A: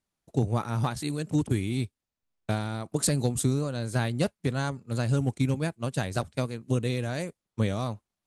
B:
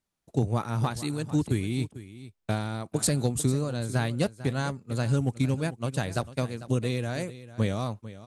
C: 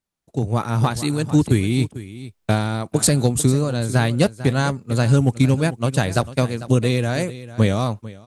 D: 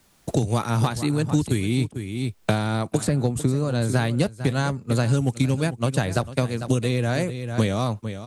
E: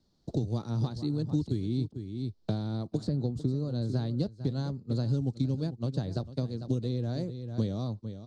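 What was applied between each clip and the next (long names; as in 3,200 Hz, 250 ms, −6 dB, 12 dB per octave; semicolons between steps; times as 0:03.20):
single-tap delay 447 ms −15.5 dB
automatic gain control gain up to 13 dB; level −1.5 dB
multiband upward and downward compressor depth 100%; level −4.5 dB
drawn EQ curve 330 Hz 0 dB, 2,500 Hz −21 dB, 4,400 Hz 0 dB, 10,000 Hz −27 dB; level −7.5 dB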